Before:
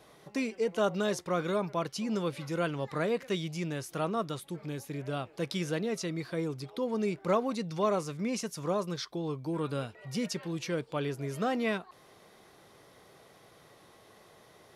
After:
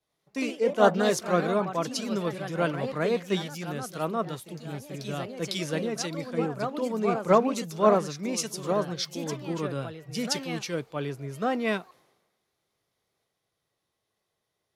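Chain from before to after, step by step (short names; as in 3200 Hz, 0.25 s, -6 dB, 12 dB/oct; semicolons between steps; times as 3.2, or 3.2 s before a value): echoes that change speed 0.1 s, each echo +2 st, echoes 2, each echo -6 dB; three-band expander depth 100%; gain +2.5 dB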